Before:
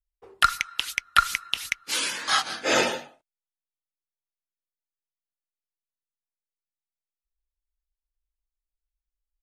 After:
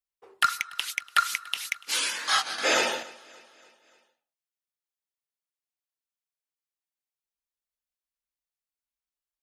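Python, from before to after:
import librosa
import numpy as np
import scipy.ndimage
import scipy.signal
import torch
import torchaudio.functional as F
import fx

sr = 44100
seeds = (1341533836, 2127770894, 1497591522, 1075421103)

y = fx.highpass(x, sr, hz=530.0, slope=6)
y = 10.0 ** (-11.5 / 20.0) * np.tanh(y / 10.0 ** (-11.5 / 20.0))
y = fx.echo_feedback(y, sr, ms=289, feedback_pct=53, wet_db=-22.5)
y = fx.band_squash(y, sr, depth_pct=70, at=(2.58, 3.03))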